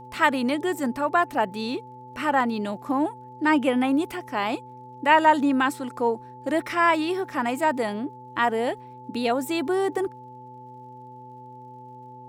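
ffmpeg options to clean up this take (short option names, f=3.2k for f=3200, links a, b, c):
-af "adeclick=t=4,bandreject=f=125.2:t=h:w=4,bandreject=f=250.4:t=h:w=4,bandreject=f=375.6:t=h:w=4,bandreject=f=500.8:t=h:w=4,bandreject=f=870:w=30"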